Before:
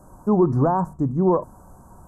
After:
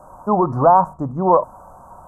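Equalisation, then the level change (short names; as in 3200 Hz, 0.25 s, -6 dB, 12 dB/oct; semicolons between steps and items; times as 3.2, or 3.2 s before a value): band shelf 860 Hz +13 dB; -2.5 dB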